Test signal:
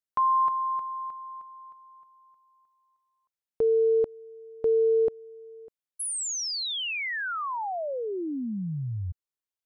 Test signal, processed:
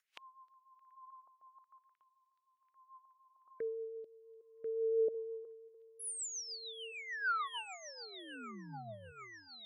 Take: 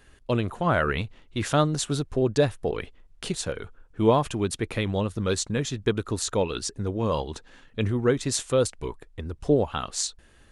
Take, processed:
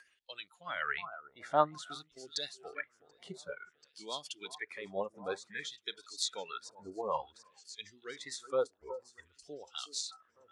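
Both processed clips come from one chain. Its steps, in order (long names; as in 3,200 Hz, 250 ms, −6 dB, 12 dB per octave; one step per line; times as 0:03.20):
high-shelf EQ 6,000 Hz +4.5 dB
delay that swaps between a low-pass and a high-pass 367 ms, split 1,500 Hz, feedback 76%, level −12 dB
upward compression, threshold −30 dBFS
noise reduction from a noise print of the clip's start 18 dB
auto-filter band-pass sine 0.54 Hz 720–4,300 Hz
rotating-speaker cabinet horn 6.7 Hz
level +3 dB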